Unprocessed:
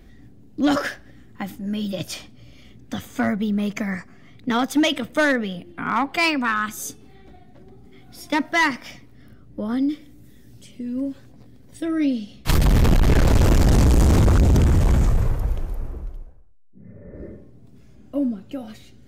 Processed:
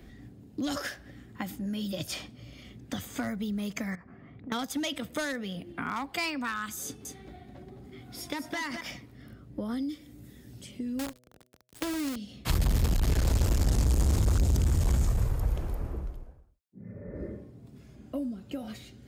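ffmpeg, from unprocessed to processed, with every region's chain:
-filter_complex "[0:a]asettb=1/sr,asplit=3[a][b][c];[a]atrim=end=3.954[d];[b]atrim=start=3.95:end=4.52,asetpts=PTS-STARTPTS,afade=t=in:d=0.004:c=qsin,afade=t=out:st=0.566:d=0.004:c=qsin,lowpass=1.5k,acompressor=threshold=-39dB:ratio=6:attack=3.2:release=140:knee=1:detection=peak[e];[c]atrim=start=4.516[f];[d][e]acrossfade=d=0.004:c1=hsin:c2=qsin[g];[g][f]acrossfade=d=0.004:c1=qsin:c2=hsin,asettb=1/sr,asplit=3[h][i][j];[h]atrim=end=6.844[k];[i]atrim=start=6.84:end=8.81,asetpts=PTS-STARTPTS,afade=t=in:d=0.004:c=qsin,afade=t=out:st=1.966:d=0.004:c=qsin,acompressor=threshold=-24dB:ratio=6:attack=3.2:release=140:knee=1:detection=peak,aecho=1:1:209:0.398,atrim=end_sample=86877[l];[j]atrim=start=8.806[m];[k][l]acrossfade=d=0.004:c1=hsin:c2=qsin[n];[n][m]acrossfade=d=0.004:c1=qsin:c2=hsin,asettb=1/sr,asplit=3[o][p][q];[o]atrim=end=10.994[r];[p]atrim=start=10.99:end=12.16,asetpts=PTS-STARTPTS,afade=t=in:d=0.004:c=qsin,afade=t=out:st=1.166:d=0.004:c=qsin,acrusher=bits=5:dc=4:mix=0:aa=0.000001,bandreject=f=124.8:t=h:w=4,bandreject=f=249.6:t=h:w=4,bandreject=f=374.4:t=h:w=4,bandreject=f=499.2:t=h:w=4,bandreject=f=624:t=h:w=4[s];[q]atrim=start=12.156[t];[r][s]acrossfade=d=0.004:c1=hsin:c2=qsin[u];[u][t]acrossfade=d=0.004:c1=qsin:c2=hsin,highpass=45,bandreject=f=5.9k:w=24,acrossover=split=80|4200[v][w][x];[v]acompressor=threshold=-23dB:ratio=4[y];[w]acompressor=threshold=-33dB:ratio=4[z];[x]acompressor=threshold=-38dB:ratio=4[aa];[y][z][aa]amix=inputs=3:normalize=0"

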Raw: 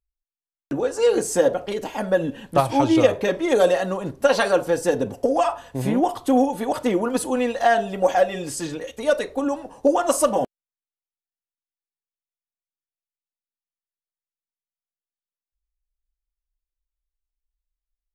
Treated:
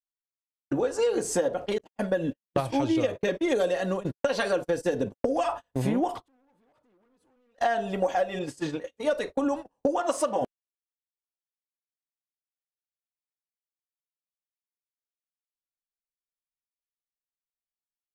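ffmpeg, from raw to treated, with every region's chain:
-filter_complex "[0:a]asettb=1/sr,asplit=3[a][b][c];[a]atrim=end=1.784[d];[b]atrim=start=1.78:end=5.49,asetpts=PTS-STARTPTS,afade=t=in:d=0.004:c=qsin,afade=t=out:st=3.706:d=0.004:c=qsin,equalizer=f=890:t=o:w=0.79:g=-5.5,agate=range=-37dB:threshold=-31dB:ratio=16:release=100:detection=peak,bandreject=f=1.3k:w=16[e];[c]atrim=start=5.486[f];[d][e]acrossfade=d=0.004:c1=hsin:c2=qsin[g];[g][f]acrossfade=d=0.004:c1=qsin:c2=hsin,asettb=1/sr,asplit=3[h][i][j];[h]atrim=end=6.164[k];[i]atrim=start=6.16:end=7.58,asetpts=PTS-STARTPTS,afade=t=in:d=0.004:c=qsin,afade=t=out:st=1.416:d=0.004:c=qsin,highshelf=f=4.6k:g=-9.5,acompressor=threshold=-25dB:ratio=20:attack=3.2:release=140:knee=1:detection=peak,asoftclip=type=hard:threshold=-31.5dB[l];[j]atrim=start=7.576[m];[k][l]acrossfade=d=0.004:c1=hsin:c2=qsin[n];[n][m]acrossfade=d=0.004:c1=qsin:c2=hsin,asettb=1/sr,asplit=3[o][p][q];[o]atrim=end=8.394[r];[p]atrim=start=8.39:end=9.13,asetpts=PTS-STARTPTS,afade=t=in:d=0.004:c=qsin,afade=t=out:st=0.736:d=0.004:c=qsin,highpass=f=83:p=1,asplit=2[s][t];[t]adelay=20,volume=-12.5dB[u];[s][u]amix=inputs=2:normalize=0,atrim=end_sample=32634,adynamicequalizer=threshold=0.00562:dfrequency=4300:dqfactor=0.7:tfrequency=4300:tqfactor=0.7:attack=5:release=100:ratio=0.375:range=3:mode=cutabove:tftype=highshelf[v];[q]atrim=start=9.126[w];[r][v]acrossfade=d=0.004:c1=hsin:c2=qsin[x];[x][w]acrossfade=d=0.004:c1=qsin:c2=hsin,asettb=1/sr,asplit=3[y][z][aa];[y]atrim=end=10.004[ab];[z]atrim=start=10:end=10.42,asetpts=PTS-STARTPTS,afade=t=in:d=0.004:c=qsin,afade=t=out:st=0.416:d=0.004:c=qsin,highpass=f=250:p=1,adynamicsmooth=sensitivity=6:basefreq=7.6k[ac];[aa]atrim=start=10.416[ad];[ab][ac]acrossfade=d=0.004:c1=hsin:c2=qsin[ae];[ae][ad]acrossfade=d=0.004:c1=qsin:c2=hsin,agate=range=-33dB:threshold=-30dB:ratio=16:detection=peak,acompressor=threshold=-22dB:ratio=6,highshelf=f=11k:g=-10"

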